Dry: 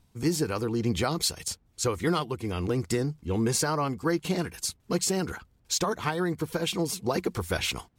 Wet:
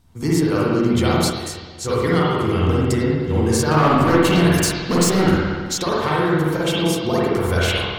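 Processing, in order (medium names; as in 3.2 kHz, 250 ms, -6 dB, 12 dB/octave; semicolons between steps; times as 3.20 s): band-stop 2.5 kHz, Q 16; 3.71–5.31 s: waveshaping leveller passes 3; compression, threshold -24 dBFS, peak gain reduction 6.5 dB; spring tank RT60 1.6 s, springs 46/58 ms, chirp 60 ms, DRR -6.5 dB; 1.30–1.87 s: detune thickener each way 31 cents -> 48 cents; trim +4.5 dB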